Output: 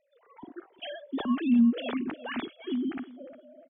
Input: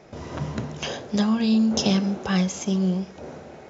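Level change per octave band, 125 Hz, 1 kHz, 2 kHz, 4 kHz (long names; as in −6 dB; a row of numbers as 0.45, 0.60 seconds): below −20 dB, −7.5 dB, −6.0 dB, −11.5 dB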